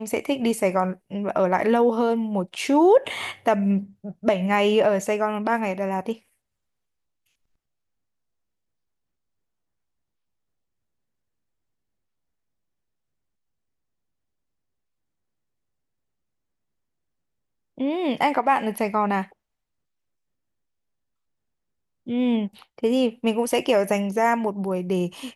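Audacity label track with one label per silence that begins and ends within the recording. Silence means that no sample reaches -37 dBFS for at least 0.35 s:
6.150000	17.780000	silence
19.240000	22.070000	silence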